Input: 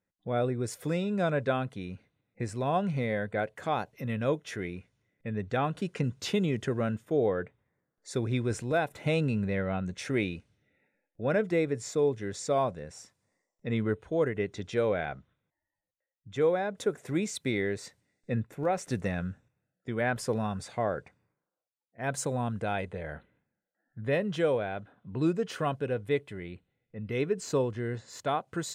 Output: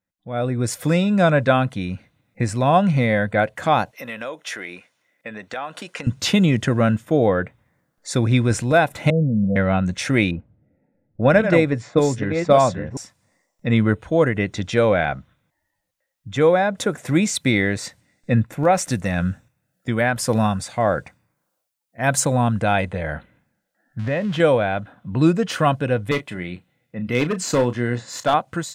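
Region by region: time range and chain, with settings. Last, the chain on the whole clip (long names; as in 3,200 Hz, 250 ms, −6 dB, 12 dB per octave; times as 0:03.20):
0:03.91–0:06.07: high-pass filter 490 Hz + downward compressor 4 to 1, threshold −39 dBFS
0:09.10–0:09.56: Chebyshev low-pass with heavy ripple 720 Hz, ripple 9 dB + notch filter 400 Hz, Q 6.8
0:10.31–0:12.97: delay that plays each chunk backwards 556 ms, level −6.5 dB + transient designer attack +5 dB, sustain +1 dB + low-pass that shuts in the quiet parts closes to 510 Hz, open at −20.5 dBFS
0:18.75–0:22.20: high-shelf EQ 6,200 Hz +7 dB + amplitude tremolo 1.8 Hz, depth 46%
0:23.99–0:24.40: spike at every zero crossing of −29 dBFS + low-pass filter 2,600 Hz + downward compressor 2.5 to 1, threshold −33 dBFS
0:26.11–0:28.34: high-pass filter 140 Hz + hard clipping −22.5 dBFS + double-tracking delay 33 ms −11.5 dB
whole clip: parametric band 410 Hz −11.5 dB 0.31 octaves; automatic gain control gain up to 13.5 dB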